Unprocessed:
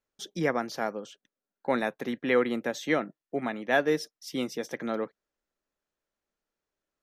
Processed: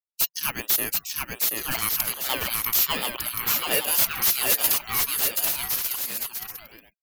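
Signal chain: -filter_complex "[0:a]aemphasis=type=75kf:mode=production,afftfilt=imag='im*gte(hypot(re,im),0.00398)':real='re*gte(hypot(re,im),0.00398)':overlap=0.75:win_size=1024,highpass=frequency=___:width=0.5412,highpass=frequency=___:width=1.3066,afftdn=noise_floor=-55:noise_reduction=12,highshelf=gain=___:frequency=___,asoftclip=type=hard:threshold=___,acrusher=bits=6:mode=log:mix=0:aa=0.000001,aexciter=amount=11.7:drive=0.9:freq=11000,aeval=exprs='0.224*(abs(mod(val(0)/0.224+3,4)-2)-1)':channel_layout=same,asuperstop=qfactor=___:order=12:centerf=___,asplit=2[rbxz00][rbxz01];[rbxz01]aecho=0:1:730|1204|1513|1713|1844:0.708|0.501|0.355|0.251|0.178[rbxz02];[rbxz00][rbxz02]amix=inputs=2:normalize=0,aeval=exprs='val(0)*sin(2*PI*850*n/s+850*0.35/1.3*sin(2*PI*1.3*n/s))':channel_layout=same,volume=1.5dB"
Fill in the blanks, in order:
740, 740, 11.5, 3400, -18.5dB, 6.5, 1200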